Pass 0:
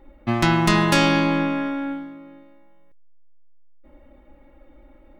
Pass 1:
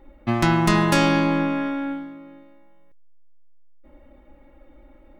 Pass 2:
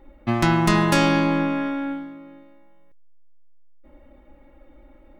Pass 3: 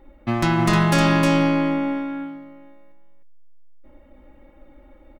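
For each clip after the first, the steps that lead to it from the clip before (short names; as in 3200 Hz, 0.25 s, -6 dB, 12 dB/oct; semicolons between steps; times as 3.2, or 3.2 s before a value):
dynamic EQ 3400 Hz, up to -4 dB, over -33 dBFS, Q 0.79
nothing audible
in parallel at -11.5 dB: wavefolder -15.5 dBFS; on the sum: echo 0.31 s -4 dB; gain -2 dB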